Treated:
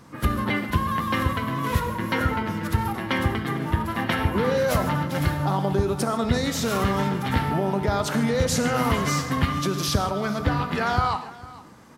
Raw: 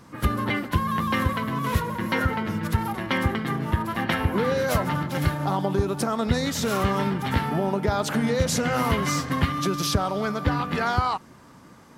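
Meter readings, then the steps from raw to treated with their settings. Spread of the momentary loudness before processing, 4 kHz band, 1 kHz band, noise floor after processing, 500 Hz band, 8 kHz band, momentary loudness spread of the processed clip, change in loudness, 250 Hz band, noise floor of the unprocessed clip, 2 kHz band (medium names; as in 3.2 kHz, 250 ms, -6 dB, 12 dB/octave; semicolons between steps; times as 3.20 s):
3 LU, +0.5 dB, +0.5 dB, -42 dBFS, +1.0 dB, +0.5 dB, 4 LU, +0.5 dB, +0.5 dB, -49 dBFS, +0.5 dB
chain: delay 451 ms -19.5 dB; gated-style reverb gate 170 ms flat, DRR 8.5 dB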